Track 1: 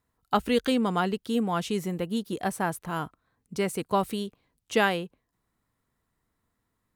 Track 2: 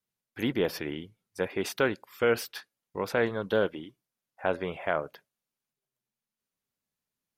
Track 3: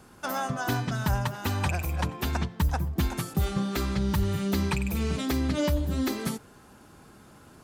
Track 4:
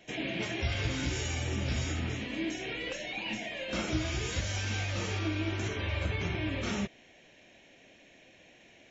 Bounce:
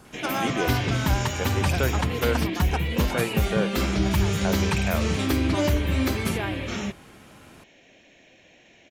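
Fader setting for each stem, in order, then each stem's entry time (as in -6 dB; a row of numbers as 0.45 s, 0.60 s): -9.5 dB, -1.5 dB, +2.5 dB, +3.0 dB; 1.60 s, 0.00 s, 0.00 s, 0.05 s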